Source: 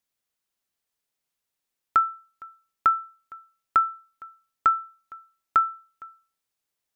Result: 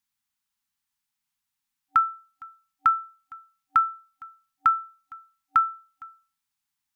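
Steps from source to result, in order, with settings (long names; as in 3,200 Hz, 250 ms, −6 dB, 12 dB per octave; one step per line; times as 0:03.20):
brick-wall band-stop 280–770 Hz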